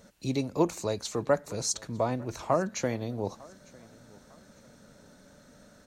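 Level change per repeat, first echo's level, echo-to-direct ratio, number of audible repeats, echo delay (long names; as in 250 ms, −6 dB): −8.5 dB, −24.0 dB, −23.5 dB, 2, 902 ms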